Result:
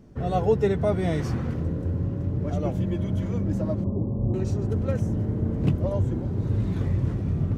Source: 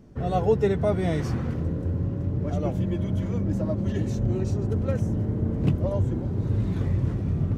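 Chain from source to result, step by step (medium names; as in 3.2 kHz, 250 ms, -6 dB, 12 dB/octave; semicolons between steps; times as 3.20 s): 3.84–4.34 s: Chebyshev low-pass 1.2 kHz, order 10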